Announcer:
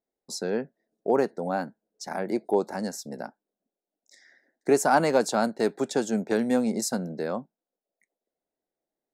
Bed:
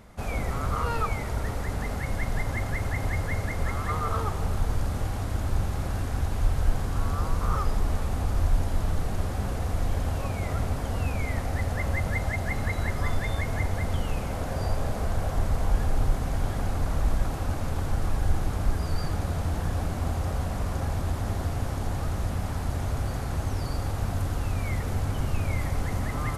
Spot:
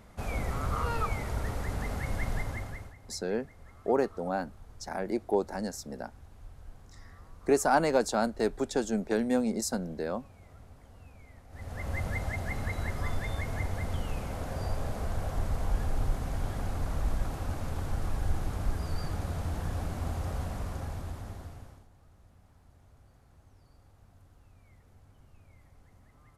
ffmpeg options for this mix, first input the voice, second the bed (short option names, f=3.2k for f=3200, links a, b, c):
-filter_complex "[0:a]adelay=2800,volume=-3.5dB[a];[1:a]volume=15.5dB,afade=t=out:st=2.3:d=0.65:silence=0.0891251,afade=t=in:st=11.49:d=0.51:silence=0.112202,afade=t=out:st=20.42:d=1.45:silence=0.0562341[b];[a][b]amix=inputs=2:normalize=0"